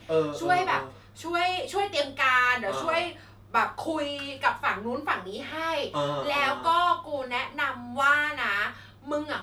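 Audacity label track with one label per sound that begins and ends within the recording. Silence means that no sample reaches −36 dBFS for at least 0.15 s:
1.190000	3.150000	sound
3.540000	8.800000	sound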